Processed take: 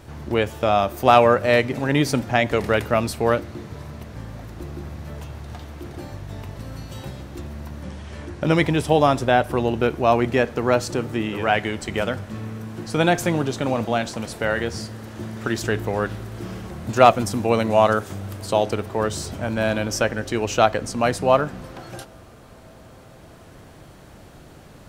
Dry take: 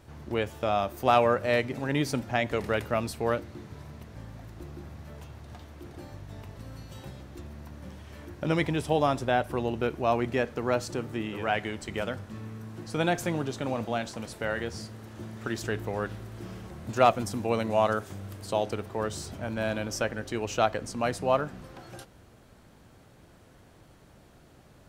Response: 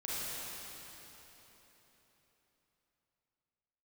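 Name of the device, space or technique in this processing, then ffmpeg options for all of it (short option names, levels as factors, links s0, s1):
ducked reverb: -filter_complex "[0:a]asplit=3[s0][s1][s2];[1:a]atrim=start_sample=2205[s3];[s1][s3]afir=irnorm=-1:irlink=0[s4];[s2]apad=whole_len=1097398[s5];[s4][s5]sidechaincompress=threshold=0.00501:ratio=8:attack=16:release=1270,volume=0.376[s6];[s0][s6]amix=inputs=2:normalize=0,asettb=1/sr,asplit=3[s7][s8][s9];[s7]atrim=end=7.834[s10];[s8]atrim=start=7.83:end=8.43,asetpts=PTS-STARTPTS,afade=t=in:d=0.004:c=qsin,afade=t=out:st=0.596:d=0.004:c=qsin,lowpass=f=10000:w=0.5412,lowpass=f=10000:w=1.3066[s11];[s9]atrim=start=8.426[s12];[s10][s11]acrossfade=d=0.004:c1=hsin:c2=qsin[s13];[s13][s12]acrossfade=d=0.004:c1=qsin:c2=hsin,volume=2.51"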